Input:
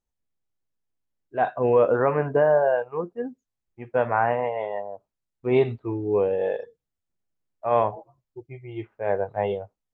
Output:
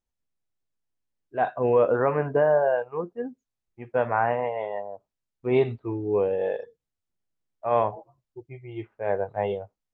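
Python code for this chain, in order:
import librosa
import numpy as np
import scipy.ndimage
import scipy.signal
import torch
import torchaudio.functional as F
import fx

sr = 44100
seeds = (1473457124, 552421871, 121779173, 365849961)

y = scipy.signal.sosfilt(scipy.signal.butter(2, 9300.0, 'lowpass', fs=sr, output='sos'), x)
y = y * 10.0 ** (-1.5 / 20.0)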